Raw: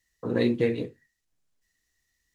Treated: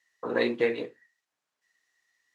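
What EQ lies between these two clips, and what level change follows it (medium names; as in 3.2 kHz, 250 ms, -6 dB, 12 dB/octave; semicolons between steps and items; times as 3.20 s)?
band-pass filter 890 Hz, Q 0.99; tilt EQ +2.5 dB/octave; peaking EQ 710 Hz -2.5 dB 1.6 oct; +9.0 dB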